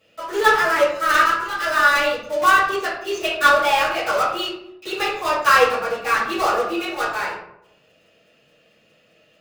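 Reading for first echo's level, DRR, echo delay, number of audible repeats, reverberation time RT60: no echo, -11.5 dB, no echo, no echo, 0.80 s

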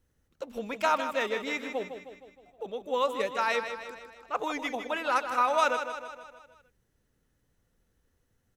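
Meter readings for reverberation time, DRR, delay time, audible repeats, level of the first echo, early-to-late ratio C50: no reverb, no reverb, 156 ms, 5, -9.0 dB, no reverb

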